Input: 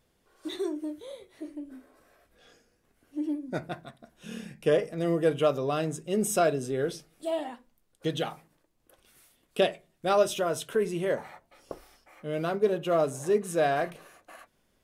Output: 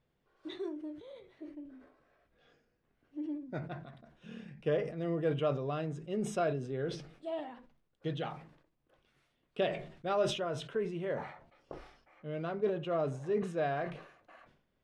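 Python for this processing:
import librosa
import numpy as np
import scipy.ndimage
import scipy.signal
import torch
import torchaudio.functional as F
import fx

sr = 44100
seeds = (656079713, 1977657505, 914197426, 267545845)

y = scipy.signal.sosfilt(scipy.signal.butter(2, 3300.0, 'lowpass', fs=sr, output='sos'), x)
y = fx.peak_eq(y, sr, hz=140.0, db=6.5, octaves=0.35)
y = fx.sustainer(y, sr, db_per_s=88.0)
y = F.gain(torch.from_numpy(y), -8.0).numpy()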